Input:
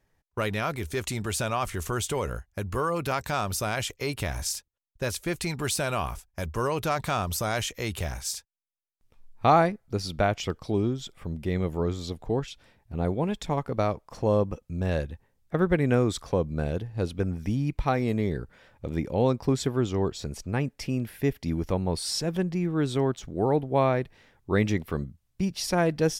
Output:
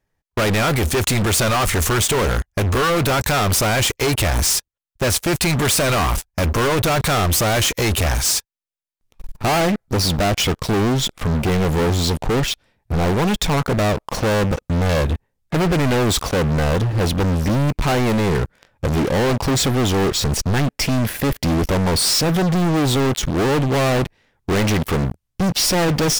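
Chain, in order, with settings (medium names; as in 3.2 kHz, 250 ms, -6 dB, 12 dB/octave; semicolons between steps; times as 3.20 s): waveshaping leveller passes 5; saturation -23 dBFS, distortion -9 dB; trim +7 dB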